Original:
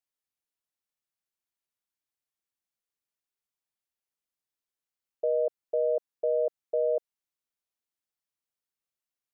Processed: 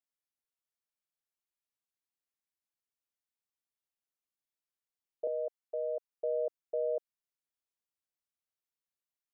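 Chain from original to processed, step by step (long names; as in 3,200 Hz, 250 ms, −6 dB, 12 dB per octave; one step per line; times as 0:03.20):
0:05.27–0:06.11: high-pass filter 510 Hz 12 dB per octave
level −6 dB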